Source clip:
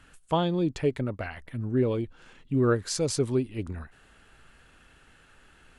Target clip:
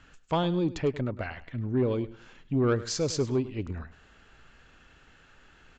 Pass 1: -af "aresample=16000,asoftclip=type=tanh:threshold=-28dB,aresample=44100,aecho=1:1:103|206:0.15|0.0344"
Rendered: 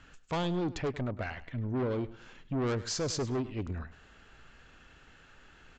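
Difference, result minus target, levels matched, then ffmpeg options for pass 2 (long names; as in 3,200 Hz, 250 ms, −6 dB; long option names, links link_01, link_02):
soft clipping: distortion +12 dB
-af "aresample=16000,asoftclip=type=tanh:threshold=-17dB,aresample=44100,aecho=1:1:103|206:0.15|0.0344"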